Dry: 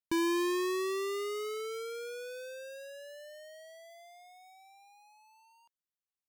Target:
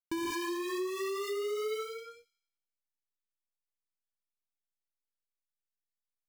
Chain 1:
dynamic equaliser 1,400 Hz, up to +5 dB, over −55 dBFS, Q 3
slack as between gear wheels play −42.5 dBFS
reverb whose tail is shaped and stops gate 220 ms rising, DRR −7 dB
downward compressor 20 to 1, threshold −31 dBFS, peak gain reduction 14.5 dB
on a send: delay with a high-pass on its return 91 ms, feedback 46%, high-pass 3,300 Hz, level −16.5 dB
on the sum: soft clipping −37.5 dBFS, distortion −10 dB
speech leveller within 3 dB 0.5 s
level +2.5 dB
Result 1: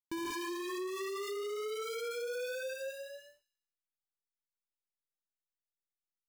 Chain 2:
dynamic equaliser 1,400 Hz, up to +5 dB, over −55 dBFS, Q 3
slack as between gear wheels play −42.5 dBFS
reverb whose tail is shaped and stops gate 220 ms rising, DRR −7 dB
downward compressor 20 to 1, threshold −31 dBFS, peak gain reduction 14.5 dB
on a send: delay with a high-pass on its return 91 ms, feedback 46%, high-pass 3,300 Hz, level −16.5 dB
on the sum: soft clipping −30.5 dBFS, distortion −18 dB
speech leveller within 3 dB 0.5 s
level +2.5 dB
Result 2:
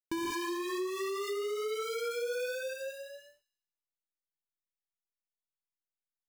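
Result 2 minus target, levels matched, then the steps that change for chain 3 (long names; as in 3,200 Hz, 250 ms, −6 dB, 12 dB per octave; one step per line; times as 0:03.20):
slack as between gear wheels: distortion −7 dB
change: slack as between gear wheels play −31.5 dBFS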